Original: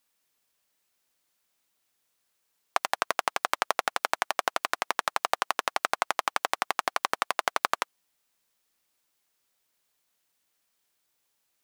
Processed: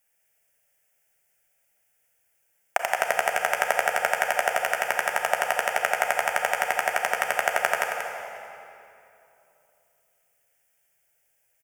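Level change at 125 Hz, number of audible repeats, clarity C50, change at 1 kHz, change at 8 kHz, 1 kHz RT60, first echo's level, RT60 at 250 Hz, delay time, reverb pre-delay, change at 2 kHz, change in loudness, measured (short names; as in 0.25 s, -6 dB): n/a, 1, 1.5 dB, +2.5 dB, +4.0 dB, 2.7 s, -7.0 dB, 3.4 s, 0.185 s, 29 ms, +7.0 dB, +4.0 dB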